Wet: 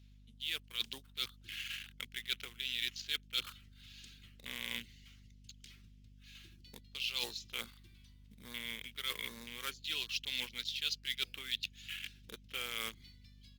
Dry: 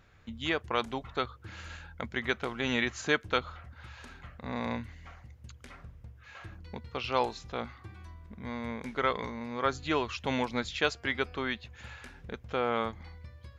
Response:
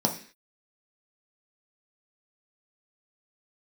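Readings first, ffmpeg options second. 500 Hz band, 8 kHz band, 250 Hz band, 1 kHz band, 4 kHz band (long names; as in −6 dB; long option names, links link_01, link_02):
−22.5 dB, +1.0 dB, −20.0 dB, −20.0 dB, +2.5 dB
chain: -filter_complex "[0:a]afwtdn=0.00631,lowpass=4200,aderivative,acrossover=split=190[link_01][link_02];[link_02]acrusher=bits=4:mode=log:mix=0:aa=0.000001[link_03];[link_01][link_03]amix=inputs=2:normalize=0,firequalizer=gain_entry='entry(120,0);entry(460,-6);entry(700,-18);entry(1100,-13);entry(3000,9)':delay=0.05:min_phase=1,areverse,acompressor=threshold=-54dB:ratio=5,areverse,aeval=exprs='val(0)+0.000158*(sin(2*PI*50*n/s)+sin(2*PI*2*50*n/s)/2+sin(2*PI*3*50*n/s)/3+sin(2*PI*4*50*n/s)/4+sin(2*PI*5*50*n/s)/5)':channel_layout=same,volume=18dB" -ar 48000 -c:a libopus -b:a 32k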